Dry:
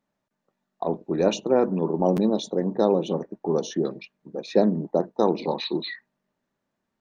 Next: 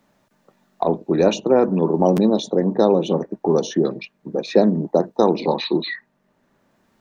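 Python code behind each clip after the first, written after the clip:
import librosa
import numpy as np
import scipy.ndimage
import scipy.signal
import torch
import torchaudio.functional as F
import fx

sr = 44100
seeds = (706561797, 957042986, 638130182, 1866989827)

y = fx.band_squash(x, sr, depth_pct=40)
y = F.gain(torch.from_numpy(y), 5.5).numpy()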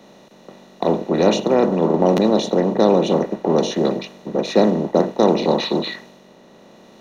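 y = fx.bin_compress(x, sr, power=0.4)
y = fx.band_widen(y, sr, depth_pct=70)
y = F.gain(torch.from_numpy(y), -4.0).numpy()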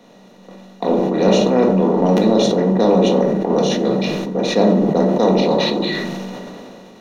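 y = fx.room_shoebox(x, sr, seeds[0], volume_m3=460.0, walls='furnished', distance_m=1.8)
y = fx.sustainer(y, sr, db_per_s=21.0)
y = F.gain(torch.from_numpy(y), -3.0).numpy()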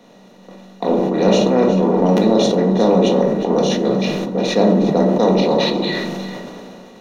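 y = x + 10.0 ** (-13.5 / 20.0) * np.pad(x, (int(362 * sr / 1000.0), 0))[:len(x)]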